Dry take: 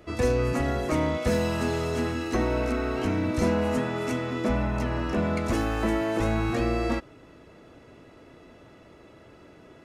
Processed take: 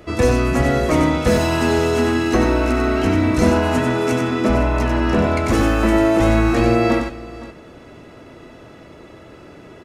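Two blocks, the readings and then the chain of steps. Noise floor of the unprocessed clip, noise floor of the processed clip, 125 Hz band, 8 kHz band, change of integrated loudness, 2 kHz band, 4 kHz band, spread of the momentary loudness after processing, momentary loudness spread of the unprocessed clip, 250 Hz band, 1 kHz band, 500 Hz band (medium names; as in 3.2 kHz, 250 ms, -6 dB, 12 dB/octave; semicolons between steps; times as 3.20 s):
-52 dBFS, -42 dBFS, +9.0 dB, +9.5 dB, +9.5 dB, +10.0 dB, +10.0 dB, 3 LU, 3 LU, +10.0 dB, +10.0 dB, +9.0 dB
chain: multi-tap echo 94/515 ms -5/-16.5 dB; trim +8.5 dB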